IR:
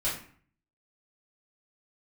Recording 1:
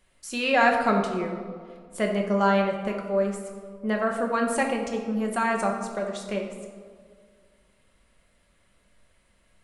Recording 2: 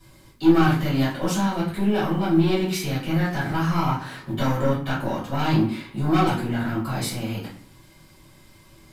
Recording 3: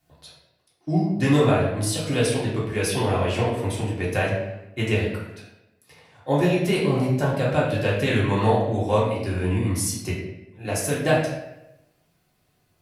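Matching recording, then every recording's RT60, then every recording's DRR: 2; 2.0, 0.50, 0.90 seconds; 0.5, −9.5, −7.0 decibels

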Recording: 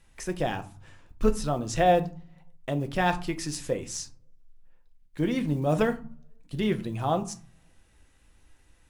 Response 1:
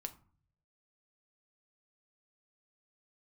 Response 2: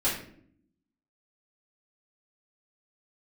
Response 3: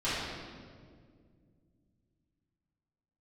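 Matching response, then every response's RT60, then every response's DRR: 1; 0.45, 0.60, 2.0 seconds; 7.0, −11.0, −14.0 decibels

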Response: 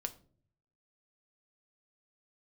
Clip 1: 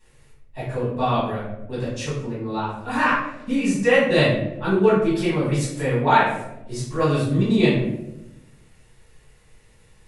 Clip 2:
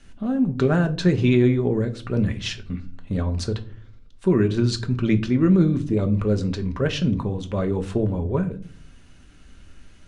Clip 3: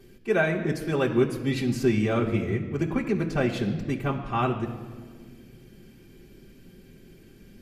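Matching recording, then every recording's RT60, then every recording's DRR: 2; 0.95 s, 0.50 s, non-exponential decay; −11.5, 6.5, −6.5 decibels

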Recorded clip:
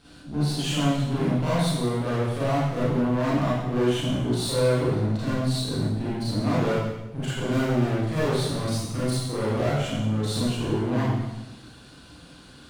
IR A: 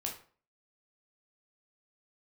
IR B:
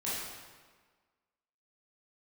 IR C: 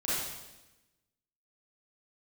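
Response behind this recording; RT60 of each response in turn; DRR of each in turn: C; 0.45, 1.5, 1.0 seconds; −0.5, −9.5, −10.5 decibels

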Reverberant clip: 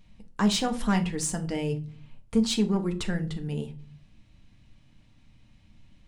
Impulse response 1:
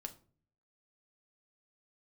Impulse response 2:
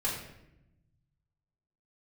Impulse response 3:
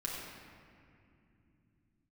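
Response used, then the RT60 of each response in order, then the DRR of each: 1; 0.45, 0.85, 2.6 seconds; 4.5, −7.0, −4.0 decibels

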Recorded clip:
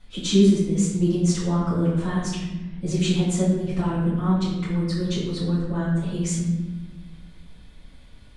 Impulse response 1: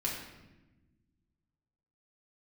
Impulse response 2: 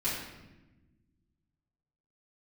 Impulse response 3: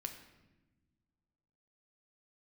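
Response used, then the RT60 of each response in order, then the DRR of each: 2; 1.1 s, 1.1 s, non-exponential decay; −4.5, −11.0, 4.5 decibels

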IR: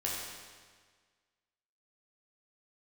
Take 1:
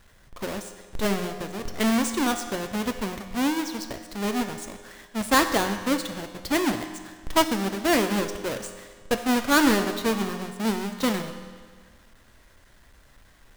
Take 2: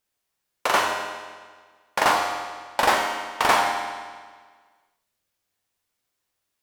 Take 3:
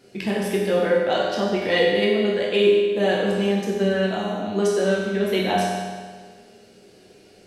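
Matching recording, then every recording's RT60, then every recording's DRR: 3; 1.6, 1.6, 1.6 seconds; 7.0, 0.0, −5.0 decibels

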